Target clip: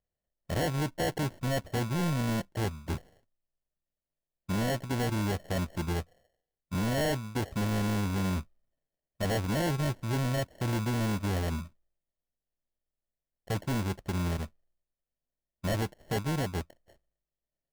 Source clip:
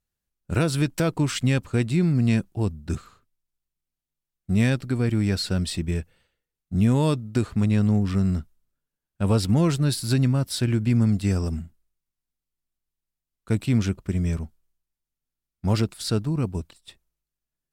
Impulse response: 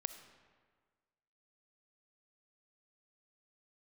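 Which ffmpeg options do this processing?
-af "lowpass=frequency=590:width_type=q:width=4.9,acrusher=samples=36:mix=1:aa=0.000001,asoftclip=type=hard:threshold=-22.5dB,volume=-4.5dB"

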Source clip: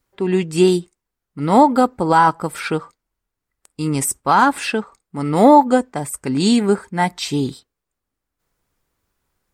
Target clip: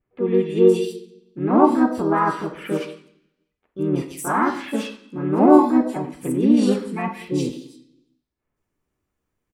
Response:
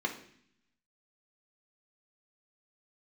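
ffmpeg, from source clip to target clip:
-filter_complex "[0:a]acrossover=split=2300[link_01][link_02];[link_02]adelay=170[link_03];[link_01][link_03]amix=inputs=2:normalize=0,asplit=2[link_04][link_05];[1:a]atrim=start_sample=2205,lowshelf=frequency=77:gain=-4[link_06];[link_05][link_06]afir=irnorm=-1:irlink=0,volume=-4dB[link_07];[link_04][link_07]amix=inputs=2:normalize=0,asplit=2[link_08][link_09];[link_09]asetrate=55563,aresample=44100,atempo=0.793701,volume=-2dB[link_10];[link_08][link_10]amix=inputs=2:normalize=0,volume=-9.5dB"

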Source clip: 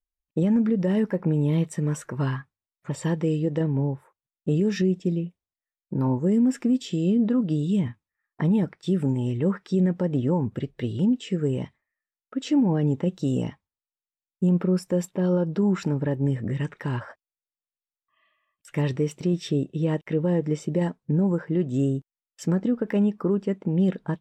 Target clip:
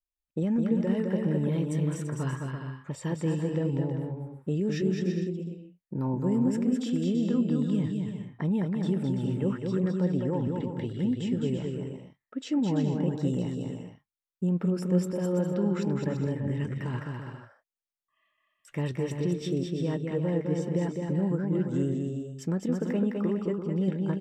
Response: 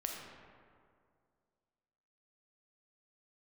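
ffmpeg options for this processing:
-af "aecho=1:1:210|336|411.6|457|484.2:0.631|0.398|0.251|0.158|0.1,volume=-6dB"

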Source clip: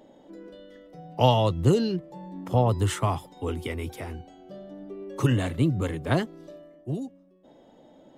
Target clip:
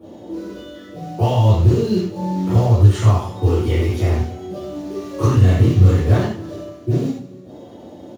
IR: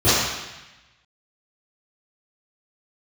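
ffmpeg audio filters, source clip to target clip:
-filter_complex "[0:a]acompressor=threshold=-31dB:ratio=10,acrusher=bits=4:mode=log:mix=0:aa=0.000001,asettb=1/sr,asplit=3[link_01][link_02][link_03];[link_01]atrim=end=5.324[link_04];[link_02]atrim=start=5.32:end=5.98,asetpts=PTS-STARTPTS,afade=type=in:duration=0.004:curve=qsin,afade=type=out:start_time=0.656:duration=0.004:curve=qsin,asplit=2[link_05][link_06];[link_06]adelay=32,volume=-4dB[link_07];[link_05][link_07]amix=inputs=2:normalize=0,atrim=end_sample=29106[link_08];[link_03]atrim=start=5.976[link_09];[link_04][link_08]acrossfade=duration=0.004:curve1=hsin:curve2=qsin[link_10];[link_10][link_09]acrossfade=duration=0.004:curve1=qsin:curve2=hsin,aecho=1:1:145|290|435|580|725:0.133|0.0707|0.0375|0.0199|0.0105[link_11];[1:a]atrim=start_sample=2205,atrim=end_sample=6615[link_12];[link_11][link_12]afir=irnorm=-1:irlink=0,volume=-9.5dB"

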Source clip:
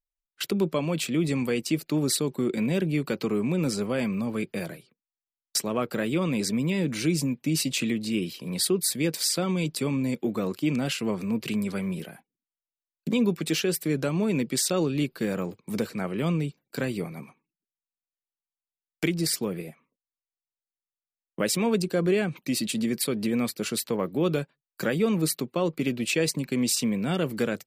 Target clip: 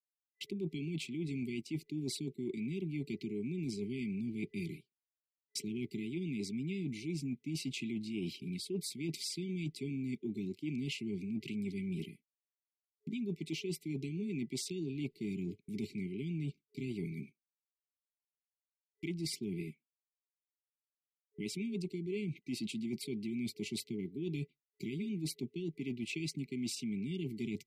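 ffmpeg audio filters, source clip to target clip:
ffmpeg -i in.wav -af "aemphasis=mode=reproduction:type=50fm,agate=range=-33dB:threshold=-38dB:ratio=3:detection=peak,afftfilt=real='re*(1-between(b*sr/4096,420,2000))':imag='im*(1-between(b*sr/4096,420,2000))':win_size=4096:overlap=0.75,areverse,acompressor=threshold=-33dB:ratio=8,areverse,volume=-2.5dB" out.wav

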